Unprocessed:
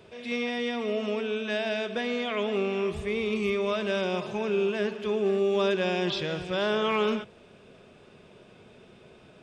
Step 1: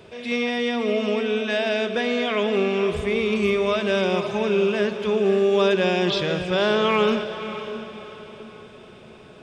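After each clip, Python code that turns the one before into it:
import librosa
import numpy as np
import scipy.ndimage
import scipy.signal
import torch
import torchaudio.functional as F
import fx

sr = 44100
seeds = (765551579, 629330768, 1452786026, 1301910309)

y = fx.echo_diffused(x, sr, ms=565, feedback_pct=40, wet_db=-11.0)
y = y * librosa.db_to_amplitude(6.0)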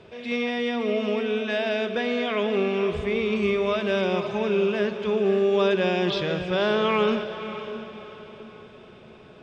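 y = fx.air_absorb(x, sr, metres=85.0)
y = y * librosa.db_to_amplitude(-2.0)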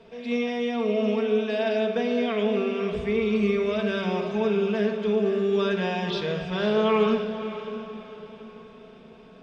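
y = x + 0.49 * np.pad(x, (int(4.5 * sr / 1000.0), 0))[:len(x)]
y = fx.room_shoebox(y, sr, seeds[0], volume_m3=2200.0, walls='furnished', distance_m=1.7)
y = y * librosa.db_to_amplitude(-4.5)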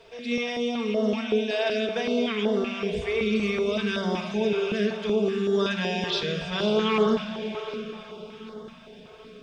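y = fx.high_shelf(x, sr, hz=3300.0, db=10.0)
y = fx.echo_feedback(y, sr, ms=783, feedback_pct=53, wet_db=-18.5)
y = fx.filter_held_notch(y, sr, hz=5.3, low_hz=210.0, high_hz=2500.0)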